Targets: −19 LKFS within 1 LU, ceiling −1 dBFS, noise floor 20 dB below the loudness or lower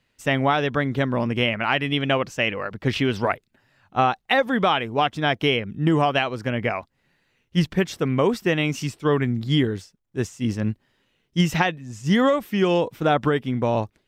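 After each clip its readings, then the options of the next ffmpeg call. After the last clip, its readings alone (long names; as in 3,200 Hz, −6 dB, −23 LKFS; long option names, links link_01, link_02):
integrated loudness −23.0 LKFS; sample peak −5.5 dBFS; target loudness −19.0 LKFS
→ -af "volume=4dB"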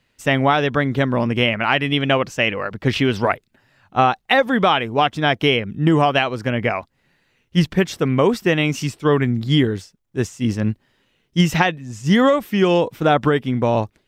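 integrated loudness −19.0 LKFS; sample peak −1.5 dBFS; background noise floor −67 dBFS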